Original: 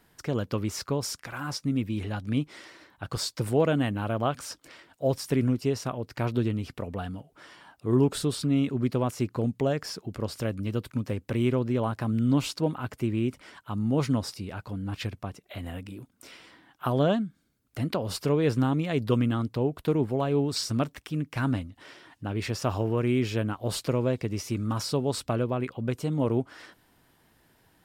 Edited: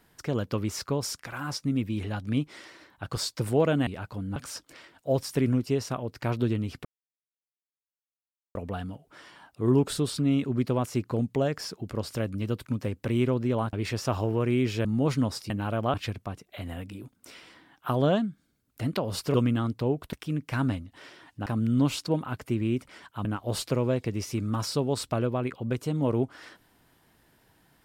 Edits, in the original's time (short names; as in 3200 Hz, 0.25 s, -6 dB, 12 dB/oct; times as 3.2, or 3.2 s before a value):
3.87–4.31 swap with 14.42–14.91
6.8 insert silence 1.70 s
11.98–13.77 swap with 22.3–23.42
18.31–19.09 cut
19.88–20.97 cut